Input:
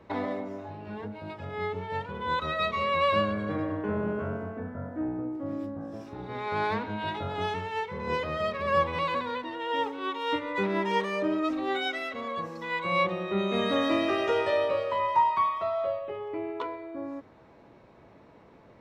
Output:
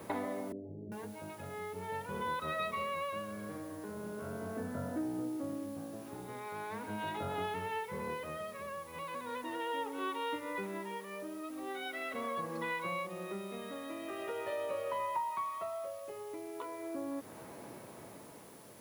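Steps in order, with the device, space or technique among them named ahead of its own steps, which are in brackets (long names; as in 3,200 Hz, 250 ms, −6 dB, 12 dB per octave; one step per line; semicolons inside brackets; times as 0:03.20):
medium wave at night (band-pass filter 110–3,500 Hz; downward compressor 6 to 1, threshold −41 dBFS, peak gain reduction 20 dB; amplitude tremolo 0.4 Hz, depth 57%; steady tone 10,000 Hz −69 dBFS; white noise bed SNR 21 dB)
0:00.52–0:00.92: Butterworth low-pass 500 Hz 36 dB per octave
level +6 dB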